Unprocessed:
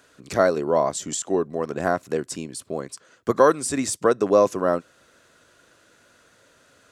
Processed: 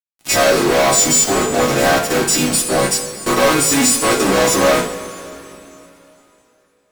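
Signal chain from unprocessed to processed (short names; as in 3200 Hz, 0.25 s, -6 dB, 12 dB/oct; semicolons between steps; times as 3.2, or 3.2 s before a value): frequency quantiser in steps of 2 st; fuzz box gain 42 dB, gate -38 dBFS; two-slope reverb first 0.37 s, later 3.2 s, from -17 dB, DRR -1.5 dB; gain -2.5 dB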